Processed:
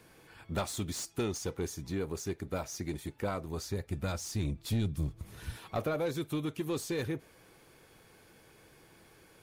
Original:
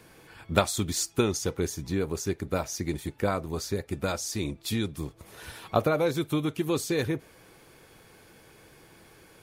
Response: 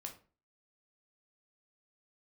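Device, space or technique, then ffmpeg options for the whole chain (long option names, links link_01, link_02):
saturation between pre-emphasis and de-emphasis: -filter_complex "[0:a]asettb=1/sr,asplit=3[link_01][link_02][link_03];[link_01]atrim=end=3.444[link_04];[link_02]atrim=start=3.44:end=5.57,asetpts=PTS-STARTPTS,afade=type=in:duration=0.004:curve=qsin,afade=type=out:start_time=2.126:duration=0.004:curve=qsin,asubboost=boost=8.5:cutoff=220[link_05];[link_03]atrim=start=5.566[link_06];[link_04][link_05]acrossfade=duration=0.004:curve1=hsin:curve2=qsin[link_07];[link_07][link_06]acrossfade=duration=0.004:curve1=qsin:curve2=hsin,highshelf=frequency=2200:gain=11.5,asoftclip=type=tanh:threshold=-19.5dB,highshelf=frequency=2200:gain=-11.5,volume=-5dB"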